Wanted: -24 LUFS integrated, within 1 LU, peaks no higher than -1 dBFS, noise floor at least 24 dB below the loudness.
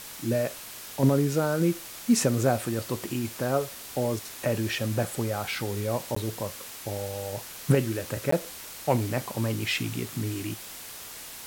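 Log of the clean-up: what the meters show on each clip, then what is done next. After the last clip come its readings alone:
dropouts 2; longest dropout 14 ms; noise floor -42 dBFS; noise floor target -53 dBFS; loudness -28.5 LUFS; peak -9.5 dBFS; loudness target -24.0 LUFS
-> interpolate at 6.15/8.31, 14 ms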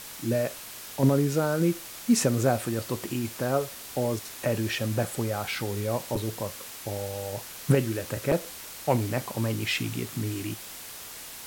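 dropouts 0; noise floor -42 dBFS; noise floor target -53 dBFS
-> denoiser 11 dB, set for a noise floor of -42 dBFS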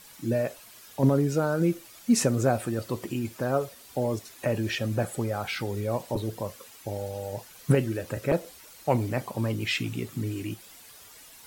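noise floor -50 dBFS; noise floor target -53 dBFS
-> denoiser 6 dB, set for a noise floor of -50 dBFS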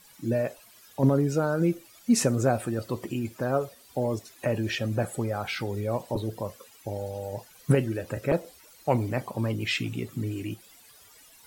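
noise floor -55 dBFS; loudness -29.0 LUFS; peak -9.5 dBFS; loudness target -24.0 LUFS
-> gain +5 dB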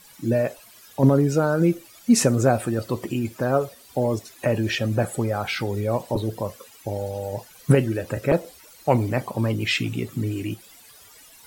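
loudness -24.0 LUFS; peak -4.5 dBFS; noise floor -50 dBFS

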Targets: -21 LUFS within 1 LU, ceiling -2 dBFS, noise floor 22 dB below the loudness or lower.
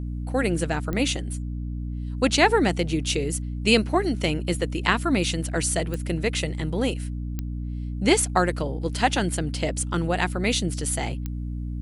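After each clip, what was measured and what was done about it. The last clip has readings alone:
clicks 4; hum 60 Hz; harmonics up to 300 Hz; hum level -28 dBFS; loudness -25.0 LUFS; peak -3.0 dBFS; loudness target -21.0 LUFS
-> de-click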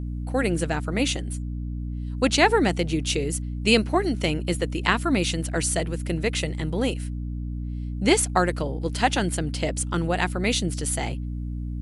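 clicks 0; hum 60 Hz; harmonics up to 300 Hz; hum level -28 dBFS
-> notches 60/120/180/240/300 Hz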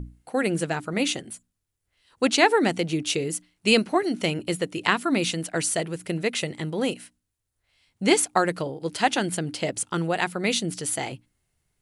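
hum none; loudness -25.0 LUFS; peak -3.5 dBFS; loudness target -21.0 LUFS
-> gain +4 dB; limiter -2 dBFS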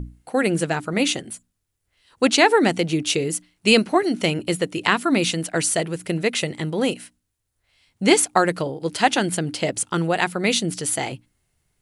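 loudness -21.0 LUFS; peak -2.0 dBFS; noise floor -76 dBFS

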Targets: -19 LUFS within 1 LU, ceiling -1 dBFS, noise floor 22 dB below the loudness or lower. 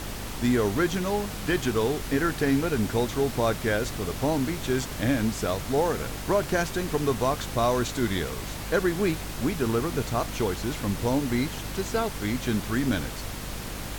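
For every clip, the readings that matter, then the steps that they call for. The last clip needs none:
hum 50 Hz; harmonics up to 300 Hz; hum level -36 dBFS; noise floor -35 dBFS; noise floor target -49 dBFS; loudness -27.0 LUFS; peak -11.0 dBFS; loudness target -19.0 LUFS
-> de-hum 50 Hz, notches 6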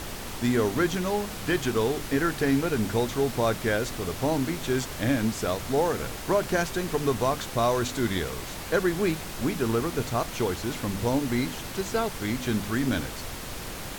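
hum none; noise floor -37 dBFS; noise floor target -50 dBFS
-> noise print and reduce 13 dB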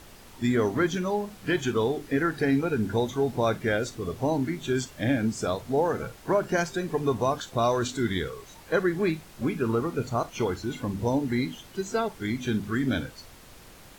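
noise floor -50 dBFS; loudness -27.5 LUFS; peak -11.0 dBFS; loudness target -19.0 LUFS
-> gain +8.5 dB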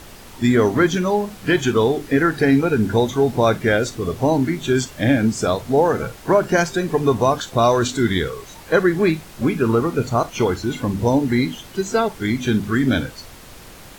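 loudness -19.0 LUFS; peak -2.5 dBFS; noise floor -41 dBFS

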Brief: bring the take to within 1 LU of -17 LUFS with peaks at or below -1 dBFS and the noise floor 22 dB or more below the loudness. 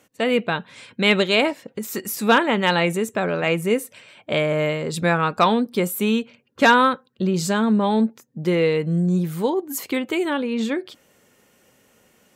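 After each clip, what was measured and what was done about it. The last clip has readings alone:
loudness -21.0 LUFS; peak -6.0 dBFS; loudness target -17.0 LUFS
-> gain +4 dB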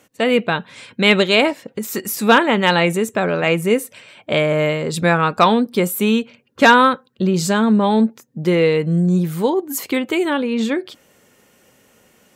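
loudness -17.0 LUFS; peak -2.0 dBFS; noise floor -56 dBFS

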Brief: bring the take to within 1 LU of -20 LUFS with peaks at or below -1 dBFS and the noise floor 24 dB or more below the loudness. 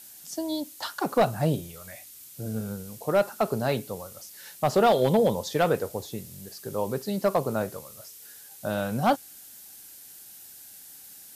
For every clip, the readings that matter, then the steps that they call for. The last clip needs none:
clipped 0.4%; flat tops at -14.0 dBFS; noise floor -48 dBFS; noise floor target -52 dBFS; loudness -27.5 LUFS; peak -14.0 dBFS; loudness target -20.0 LUFS
-> clip repair -14 dBFS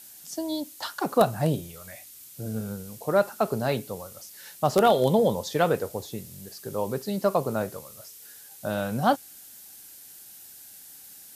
clipped 0.0%; noise floor -48 dBFS; noise floor target -51 dBFS
-> denoiser 6 dB, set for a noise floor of -48 dBFS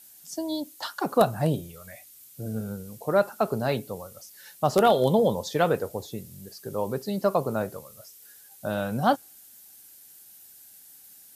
noise floor -51 dBFS; loudness -26.5 LUFS; peak -5.0 dBFS; loudness target -20.0 LUFS
-> gain +6.5 dB; limiter -1 dBFS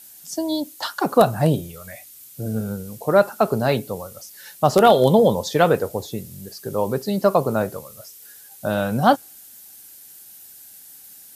loudness -20.0 LUFS; peak -1.0 dBFS; noise floor -45 dBFS

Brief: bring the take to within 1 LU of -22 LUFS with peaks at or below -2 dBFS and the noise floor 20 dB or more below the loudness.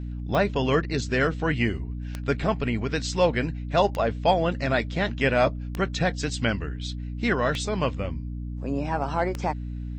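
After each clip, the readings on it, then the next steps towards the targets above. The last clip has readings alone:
clicks 6; hum 60 Hz; harmonics up to 300 Hz; hum level -30 dBFS; loudness -26.0 LUFS; peak -8.5 dBFS; loudness target -22.0 LUFS
-> de-click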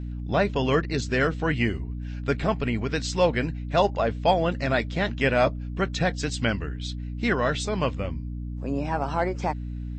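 clicks 0; hum 60 Hz; harmonics up to 300 Hz; hum level -30 dBFS
-> notches 60/120/180/240/300 Hz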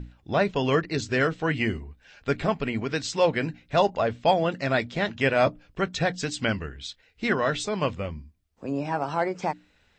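hum none; loudness -26.5 LUFS; peak -9.0 dBFS; loudness target -22.0 LUFS
-> gain +4.5 dB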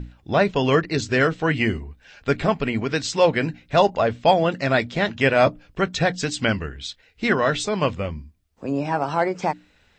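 loudness -22.0 LUFS; peak -4.5 dBFS; noise floor -60 dBFS

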